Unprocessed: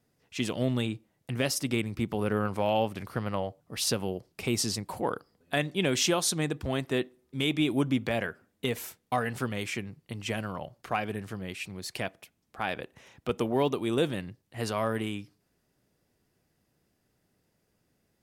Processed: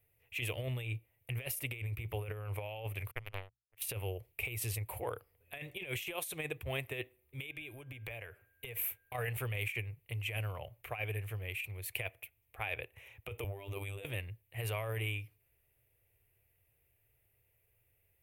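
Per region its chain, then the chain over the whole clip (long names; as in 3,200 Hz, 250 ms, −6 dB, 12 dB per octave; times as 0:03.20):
0:03.11–0:03.82: power curve on the samples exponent 3 + mains-hum notches 60/120/180 Hz
0:07.49–0:09.14: downward compressor 16 to 1, threshold −35 dBFS + steady tone 1,600 Hz −64 dBFS
0:13.44–0:14.05: parametric band 8,000 Hz +8 dB 0.28 octaves + compressor whose output falls as the input rises −34 dBFS + phases set to zero 98.8 Hz
whole clip: drawn EQ curve 110 Hz 0 dB, 200 Hz −29 dB, 460 Hz −8 dB, 970 Hz −12 dB, 1,500 Hz −13 dB, 2,400 Hz +3 dB, 4,900 Hz −22 dB, 7,200 Hz −14 dB, 13,000 Hz +7 dB; compressor whose output falls as the input rises −38 dBFS, ratio −0.5; level +1 dB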